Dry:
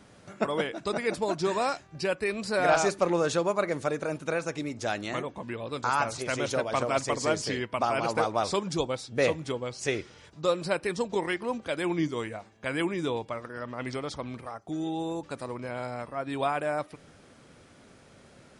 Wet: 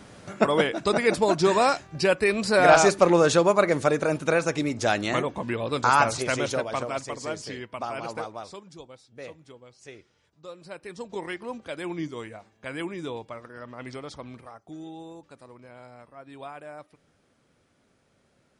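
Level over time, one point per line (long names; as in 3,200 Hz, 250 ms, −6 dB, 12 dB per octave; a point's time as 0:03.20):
0:06.10 +7 dB
0:07.10 −5.5 dB
0:08.13 −5.5 dB
0:08.66 −16 dB
0:10.50 −16 dB
0:11.24 −4 dB
0:14.31 −4 dB
0:15.34 −12 dB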